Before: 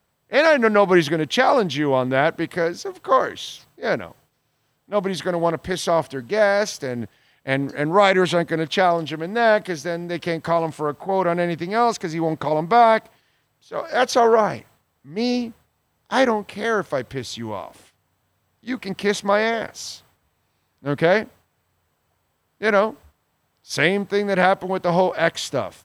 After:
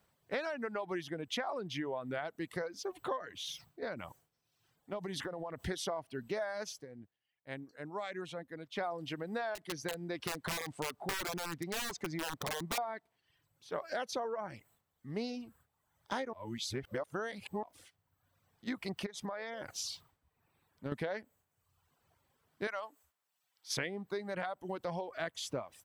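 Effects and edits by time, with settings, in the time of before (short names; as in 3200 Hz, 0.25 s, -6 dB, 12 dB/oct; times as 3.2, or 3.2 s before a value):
3.41–5.6 compressor, threshold -29 dBFS
6.71–8.9 dip -18.5 dB, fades 0.15 s
9.55–12.78 wrapped overs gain 16 dB
16.33–17.63 reverse
19.06–20.92 compressor 8:1, threshold -29 dBFS
22.67–23.77 HPF 1300 Hz 6 dB/oct
whole clip: compressor 8:1, threshold -31 dBFS; reverb removal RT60 1 s; gain -3.5 dB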